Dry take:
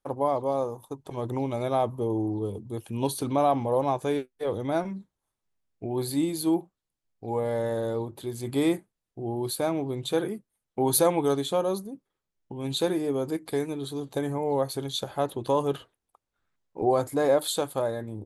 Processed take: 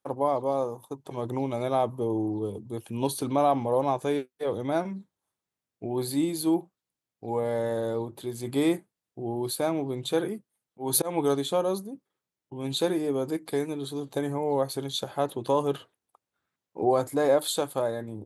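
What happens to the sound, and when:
10.22–12.52 s: slow attack 178 ms
whole clip: high-pass 110 Hz

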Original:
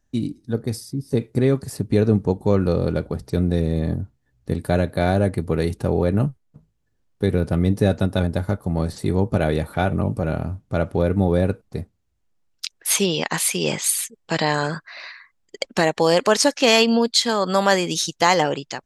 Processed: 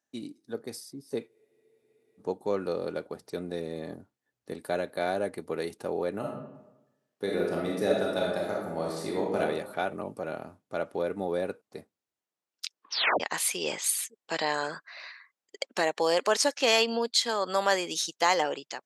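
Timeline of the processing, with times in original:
1.29 s: spectral freeze 0.90 s
6.19–9.40 s: reverb throw, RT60 0.94 s, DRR -3 dB
12.66 s: tape stop 0.54 s
whole clip: high-pass 370 Hz 12 dB/octave; trim -7 dB

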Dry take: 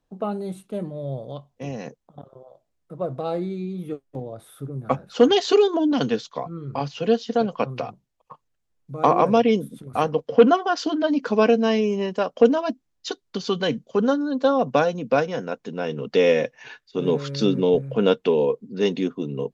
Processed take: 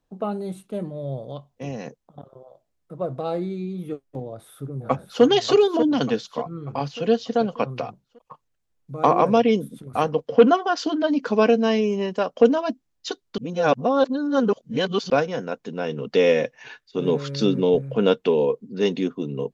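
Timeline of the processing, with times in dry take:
4.21–5.23 s: echo throw 590 ms, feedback 45%, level -8 dB
13.38–15.10 s: reverse

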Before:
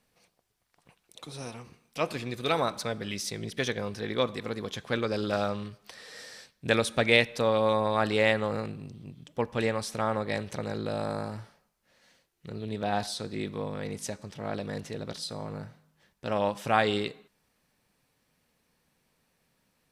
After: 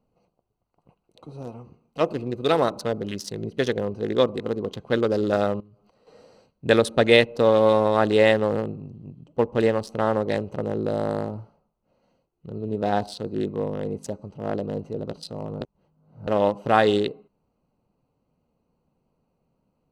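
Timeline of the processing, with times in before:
5.60–6.07 s: compression 12:1, threshold -52 dBFS
15.61–16.27 s: reverse
whole clip: local Wiener filter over 25 samples; band-stop 2.3 kHz, Q 8.1; dynamic bell 400 Hz, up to +6 dB, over -41 dBFS, Q 0.98; trim +4 dB

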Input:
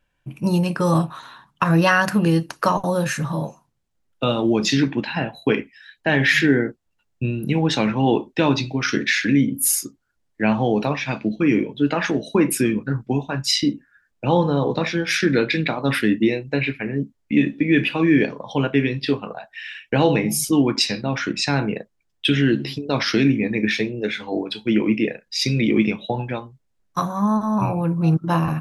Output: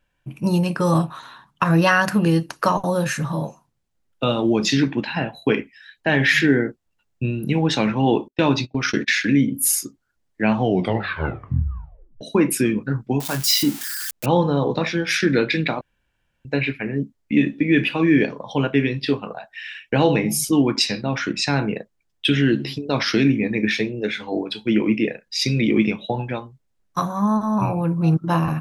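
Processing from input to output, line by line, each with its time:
8.28–9.24 s: gate -27 dBFS, range -26 dB
10.58 s: tape stop 1.63 s
13.20–14.26 s: zero-crossing glitches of -17 dBFS
15.81–16.45 s: room tone

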